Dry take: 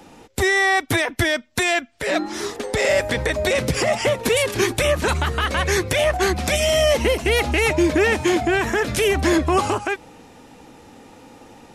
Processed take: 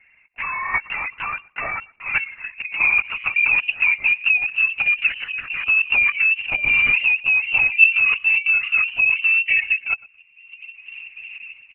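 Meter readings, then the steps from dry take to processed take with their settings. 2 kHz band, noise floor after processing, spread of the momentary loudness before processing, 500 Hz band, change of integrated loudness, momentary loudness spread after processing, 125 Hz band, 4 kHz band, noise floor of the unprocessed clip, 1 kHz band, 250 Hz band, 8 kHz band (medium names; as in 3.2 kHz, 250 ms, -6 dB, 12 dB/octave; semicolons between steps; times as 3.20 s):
+6.0 dB, -56 dBFS, 6 LU, under -25 dB, +2.5 dB, 14 LU, under -20 dB, -7.0 dB, -47 dBFS, -8.5 dB, under -25 dB, under -40 dB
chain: knee-point frequency compression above 2.2 kHz 1.5:1; reverb removal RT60 1.6 s; high-pass 70 Hz 24 dB/octave; peaking EQ 270 Hz +10.5 dB 0.56 oct; level rider gain up to 11.5 dB; band-pass sweep 960 Hz -> 430 Hz, 1.75–4.55 s; level held to a coarse grid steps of 10 dB; feedback delay 116 ms, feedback 15%, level -23 dB; frequency inversion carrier 3 kHz; LPC vocoder at 8 kHz whisper; trim +4 dB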